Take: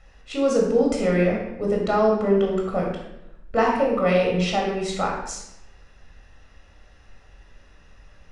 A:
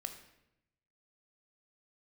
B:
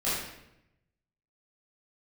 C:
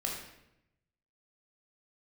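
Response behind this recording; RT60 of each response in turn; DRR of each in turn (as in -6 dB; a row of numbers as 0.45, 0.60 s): C; 0.85, 0.85, 0.85 s; 6.5, -11.5, -1.5 dB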